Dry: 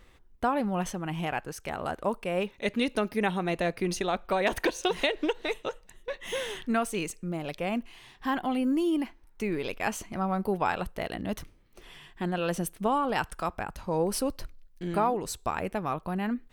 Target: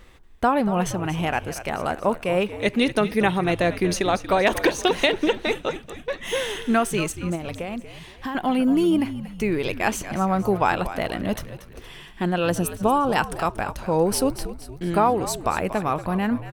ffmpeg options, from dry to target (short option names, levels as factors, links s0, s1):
-filter_complex "[0:a]asettb=1/sr,asplit=3[s0][s1][s2];[s0]atrim=end=7.354[s3];[s1]atrim=start=7.35:end=8.35,asetpts=PTS-STARTPTS,afade=t=in:d=0.004:c=qsin,afade=t=out:st=0.996:d=0.004:c=qsin,acompressor=threshold=0.0178:ratio=6[s4];[s2]atrim=start=8.346[s5];[s3][s4]acrossfade=d=0.004:c1=hsin:c2=qsin[s6];[s6][s5]acrossfade=d=0.004:c1=qsin:c2=hsin,asettb=1/sr,asplit=3[s7][s8][s9];[s7]atrim=end=12.504[s10];[s8]atrim=start=12.5:end=13.16,asetpts=PTS-STARTPTS,afade=t=in:d=0.004:c=qsin,afade=t=out:st=0.656:d=0.004:c=qsin,equalizer=f=2200:w=1.5:g=-6.5[s11];[s9]atrim=start=13.156[s12];[s10][s11]acrossfade=d=0.004:c1=hsin:c2=qsin[s13];[s13][s12]acrossfade=d=0.004:c1=qsin:c2=hsin,asplit=6[s14][s15][s16][s17][s18][s19];[s15]adelay=234,afreqshift=-74,volume=0.224[s20];[s16]adelay=468,afreqshift=-148,volume=0.105[s21];[s17]adelay=702,afreqshift=-222,volume=0.0495[s22];[s18]adelay=936,afreqshift=-296,volume=0.0232[s23];[s19]adelay=1170,afreqshift=-370,volume=0.011[s24];[s14][s20][s21][s22][s23][s24]amix=inputs=6:normalize=0,volume=2.24"